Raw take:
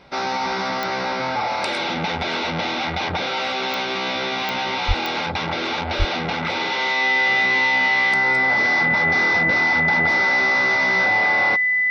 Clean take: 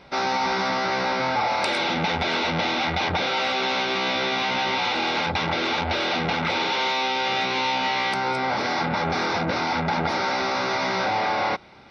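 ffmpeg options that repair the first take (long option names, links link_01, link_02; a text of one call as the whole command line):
ffmpeg -i in.wav -filter_complex "[0:a]adeclick=threshold=4,bandreject=frequency=2000:width=30,asplit=3[link_01][link_02][link_03];[link_01]afade=type=out:start_time=4.87:duration=0.02[link_04];[link_02]highpass=frequency=140:width=0.5412,highpass=frequency=140:width=1.3066,afade=type=in:start_time=4.87:duration=0.02,afade=type=out:start_time=4.99:duration=0.02[link_05];[link_03]afade=type=in:start_time=4.99:duration=0.02[link_06];[link_04][link_05][link_06]amix=inputs=3:normalize=0,asplit=3[link_07][link_08][link_09];[link_07]afade=type=out:start_time=5.98:duration=0.02[link_10];[link_08]highpass=frequency=140:width=0.5412,highpass=frequency=140:width=1.3066,afade=type=in:start_time=5.98:duration=0.02,afade=type=out:start_time=6.1:duration=0.02[link_11];[link_09]afade=type=in:start_time=6.1:duration=0.02[link_12];[link_10][link_11][link_12]amix=inputs=3:normalize=0" out.wav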